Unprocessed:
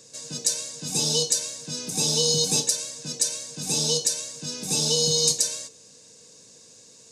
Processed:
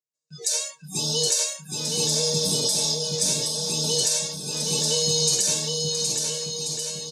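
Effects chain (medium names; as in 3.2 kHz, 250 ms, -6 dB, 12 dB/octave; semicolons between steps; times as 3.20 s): transient shaper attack -1 dB, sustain +11 dB; spectral replace 2.15–2.92 s, 590–7600 Hz before; spectral noise reduction 28 dB; gate with hold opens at -53 dBFS; comb of notches 260 Hz; bouncing-ball echo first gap 770 ms, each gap 0.8×, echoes 5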